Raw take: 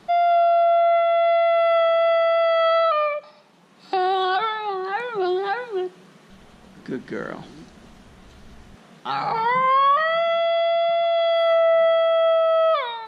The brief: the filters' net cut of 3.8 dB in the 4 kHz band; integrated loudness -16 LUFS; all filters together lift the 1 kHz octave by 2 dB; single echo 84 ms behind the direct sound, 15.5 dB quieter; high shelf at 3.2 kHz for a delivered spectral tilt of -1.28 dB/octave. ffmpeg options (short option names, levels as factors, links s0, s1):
-af "equalizer=f=1000:t=o:g=3,highshelf=f=3200:g=3,equalizer=f=4000:t=o:g=-7,aecho=1:1:84:0.168,volume=1.26"